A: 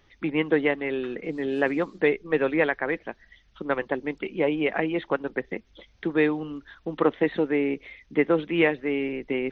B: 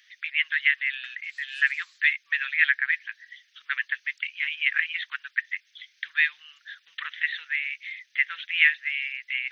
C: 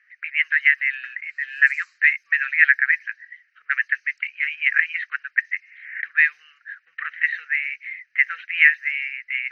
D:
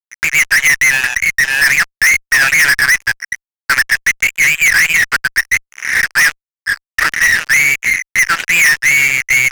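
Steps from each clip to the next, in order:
elliptic high-pass 1700 Hz, stop band 60 dB; gain +8.5 dB
fixed phaser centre 940 Hz, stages 6; low-pass opened by the level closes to 1700 Hz, open at -22.5 dBFS; spectral repair 5.65–5.98, 840–3000 Hz both; gain +7 dB
fuzz box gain 33 dB, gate -40 dBFS; gain +5.5 dB

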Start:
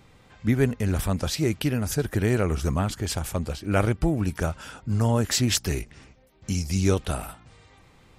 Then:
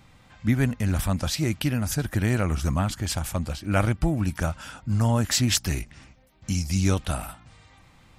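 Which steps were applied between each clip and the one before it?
bell 420 Hz -10.5 dB 0.48 oct; gain +1 dB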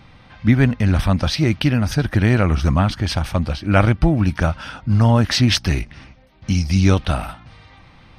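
polynomial smoothing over 15 samples; gain +8 dB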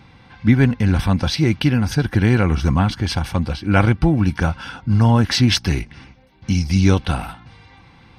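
notch comb 620 Hz; gain +1 dB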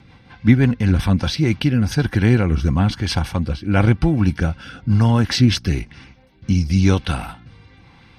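rotary speaker horn 5.5 Hz, later 1 Hz, at 0.98; gain +1.5 dB

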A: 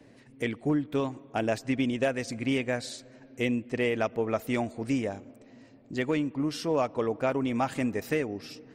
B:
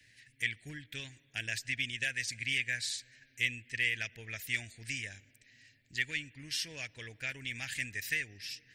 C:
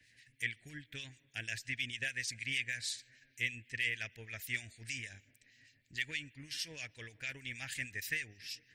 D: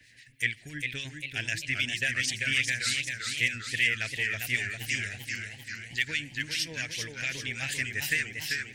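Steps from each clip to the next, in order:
EQ curve 110 Hz 0 dB, 230 Hz -16 dB, 1200 Hz -21 dB, 1700 Hz +11 dB; gain -7.5 dB
harmonic tremolo 6.4 Hz, crossover 2200 Hz
warbling echo 0.396 s, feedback 59%, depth 149 cents, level -5 dB; gain +8.5 dB

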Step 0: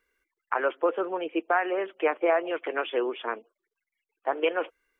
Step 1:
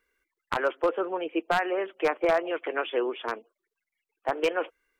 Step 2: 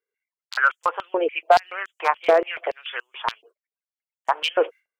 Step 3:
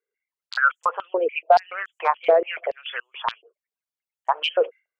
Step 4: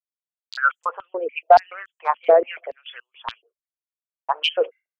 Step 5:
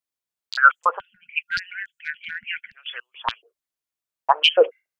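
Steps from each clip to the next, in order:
one-sided fold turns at -17 dBFS
gate with hold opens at -53 dBFS; stepped high-pass 7 Hz 430–7000 Hz; gain +3 dB
formant sharpening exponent 1.5
dynamic EQ 260 Hz, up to +6 dB, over -47 dBFS, Q 4.6; three-band expander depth 100%; gain -2.5 dB
spectral delete 0.99–2.75, 220–1400 Hz; gain +5.5 dB

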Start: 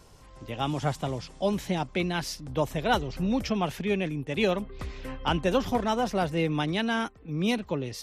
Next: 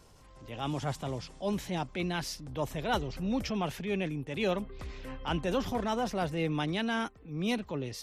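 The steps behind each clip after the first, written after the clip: transient shaper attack -6 dB, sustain +1 dB; gain -3.5 dB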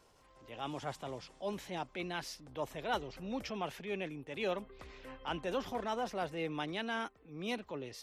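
tone controls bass -10 dB, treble -4 dB; gain -4 dB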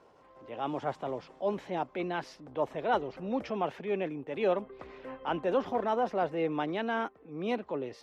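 band-pass 510 Hz, Q 0.53; gain +8.5 dB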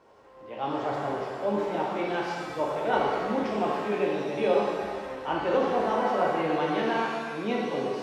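shimmer reverb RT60 1.7 s, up +7 st, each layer -8 dB, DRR -3.5 dB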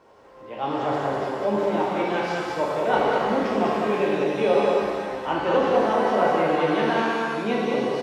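echo 0.198 s -3.5 dB; gain +3.5 dB

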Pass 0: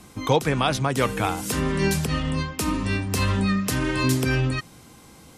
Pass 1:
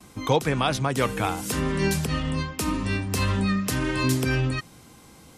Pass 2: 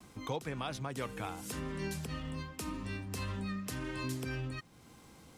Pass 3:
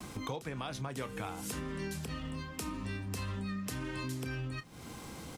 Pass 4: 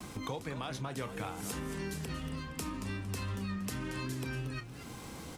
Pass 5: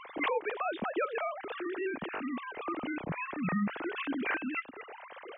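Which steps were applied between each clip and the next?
gate with hold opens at -40 dBFS; gain -1.5 dB
compressor 1.5:1, threshold -43 dBFS, peak gain reduction 10 dB; backlash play -56.5 dBFS; gain -6.5 dB
compressor 3:1, threshold -51 dBFS, peak gain reduction 14.5 dB; doubler 30 ms -13.5 dB; gain +11 dB
warbling echo 0.231 s, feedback 34%, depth 170 cents, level -10.5 dB
sine-wave speech; record warp 33 1/3 rpm, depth 160 cents; gain +3.5 dB

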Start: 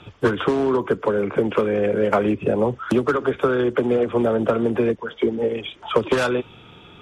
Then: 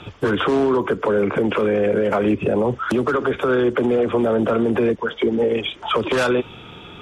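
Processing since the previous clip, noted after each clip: bell 120 Hz -2 dB; limiter -17 dBFS, peak gain reduction 10.5 dB; gain +6.5 dB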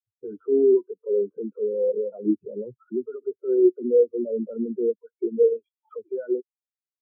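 high shelf 4800 Hz -11 dB; spectral expander 4:1; gain +1.5 dB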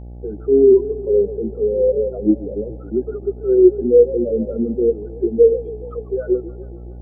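buzz 60 Hz, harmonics 14, -41 dBFS -8 dB/oct; warbling echo 0.141 s, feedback 66%, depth 186 cents, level -17 dB; gain +7 dB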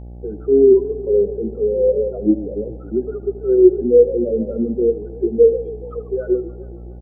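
echo 78 ms -16 dB

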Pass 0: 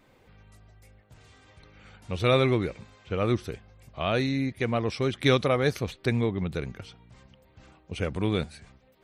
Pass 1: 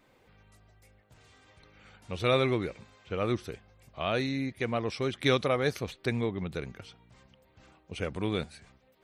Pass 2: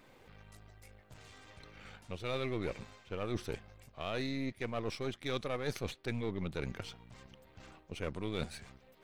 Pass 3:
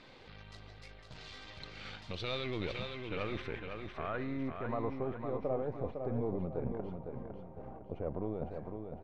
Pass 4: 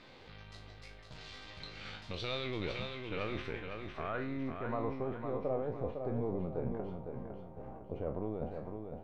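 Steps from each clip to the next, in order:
low shelf 200 Hz -5 dB; gain -2.5 dB
half-wave gain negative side -7 dB; reverse; compressor 6:1, threshold -39 dBFS, peak gain reduction 17 dB; reverse; gain +5.5 dB
limiter -31.5 dBFS, peak gain reduction 10.5 dB; low-pass sweep 4300 Hz -> 710 Hz, 2.27–5.29; feedback echo 0.506 s, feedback 40%, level -6 dB; gain +3.5 dB
spectral trails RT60 0.34 s; gain -1 dB

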